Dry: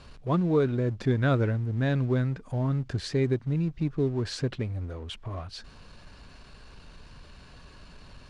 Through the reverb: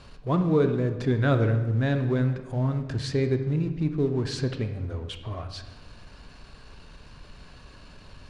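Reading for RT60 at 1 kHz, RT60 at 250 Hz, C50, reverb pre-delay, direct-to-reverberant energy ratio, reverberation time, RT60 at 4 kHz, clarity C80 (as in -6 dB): 1.1 s, 1.5 s, 9.5 dB, 24 ms, 7.5 dB, 1.2 s, 0.80 s, 11.5 dB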